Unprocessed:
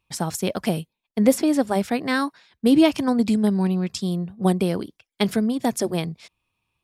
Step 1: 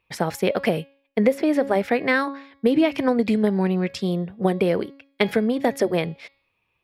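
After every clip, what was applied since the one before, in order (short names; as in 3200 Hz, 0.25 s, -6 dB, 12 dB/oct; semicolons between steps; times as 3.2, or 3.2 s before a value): graphic EQ 500/2000/8000 Hz +10/+11/-9 dB; compressor 6:1, threshold -14 dBFS, peak gain reduction 11.5 dB; de-hum 276.5 Hz, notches 18; gain -1 dB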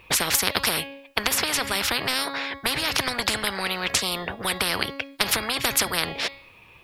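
spectral compressor 10:1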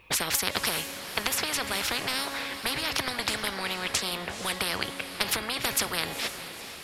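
diffused feedback echo 0.47 s, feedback 53%, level -10.5 dB; gain -5 dB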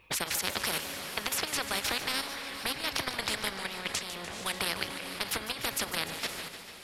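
level quantiser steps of 10 dB; warbling echo 0.149 s, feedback 69%, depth 112 cents, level -11.5 dB; gain -1 dB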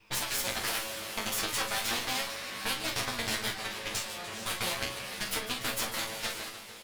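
minimum comb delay 9 ms; doubler 40 ms -7 dB; chorus 0.38 Hz, delay 15.5 ms, depth 3.4 ms; gain +4 dB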